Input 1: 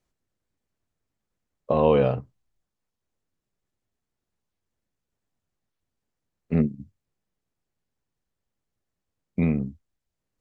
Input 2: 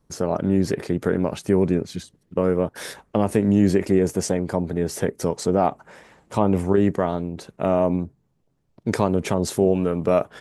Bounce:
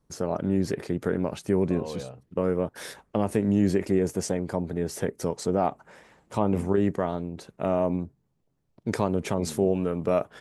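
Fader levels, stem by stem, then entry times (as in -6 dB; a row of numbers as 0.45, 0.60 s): -17.5, -5.0 dB; 0.00, 0.00 s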